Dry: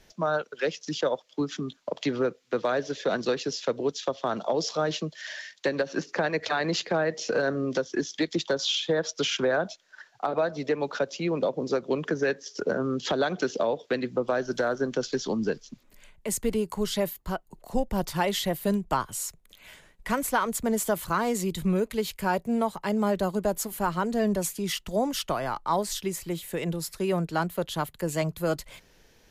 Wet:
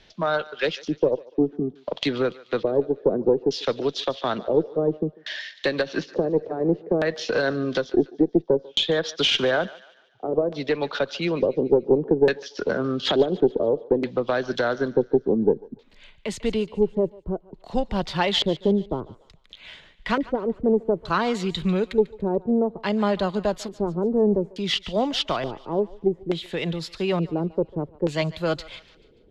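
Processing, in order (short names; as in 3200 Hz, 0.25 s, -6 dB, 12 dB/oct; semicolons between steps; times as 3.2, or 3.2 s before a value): LFO low-pass square 0.57 Hz 420–3700 Hz; added harmonics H 2 -17 dB, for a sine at -9.5 dBFS; thinning echo 0.145 s, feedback 46%, high-pass 740 Hz, level -17.5 dB; gain +2.5 dB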